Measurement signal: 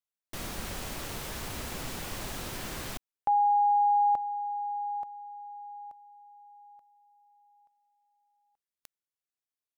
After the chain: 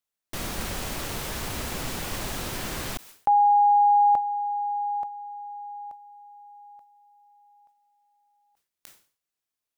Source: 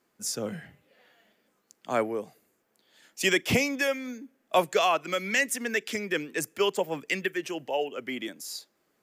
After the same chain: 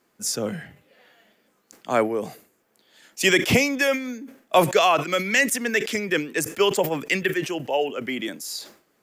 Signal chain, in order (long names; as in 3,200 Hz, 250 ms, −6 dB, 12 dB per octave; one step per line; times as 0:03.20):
level that may fall only so fast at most 130 dB per second
level +5.5 dB